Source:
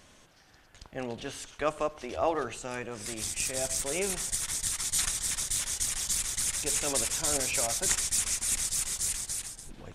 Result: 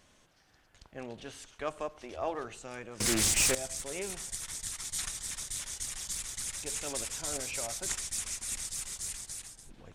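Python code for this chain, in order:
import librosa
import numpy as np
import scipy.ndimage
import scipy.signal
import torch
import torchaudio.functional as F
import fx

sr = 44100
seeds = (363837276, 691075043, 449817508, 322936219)

y = fx.leveller(x, sr, passes=5, at=(3.0, 3.55))
y = fx.doppler_dist(y, sr, depth_ms=0.3)
y = F.gain(torch.from_numpy(y), -6.5).numpy()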